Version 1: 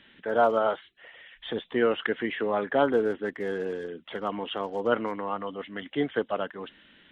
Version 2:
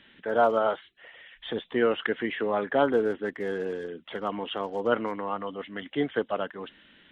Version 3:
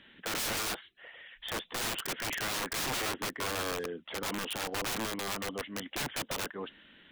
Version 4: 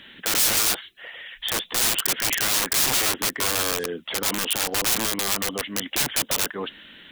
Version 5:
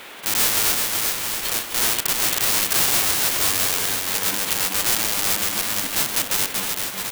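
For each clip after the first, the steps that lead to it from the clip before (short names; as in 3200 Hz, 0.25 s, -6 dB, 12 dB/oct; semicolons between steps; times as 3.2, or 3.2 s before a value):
nothing audible
wrapped overs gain 27.5 dB; gain -1 dB
high shelf 3800 Hz +11.5 dB; in parallel at -2 dB: limiter -23 dBFS, peak gain reduction 8 dB; on the sum: gain +3.5 dB
spectral whitening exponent 0.1; band noise 250–3400 Hz -42 dBFS; bouncing-ball echo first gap 0.38 s, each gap 0.75×, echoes 5; gain +1 dB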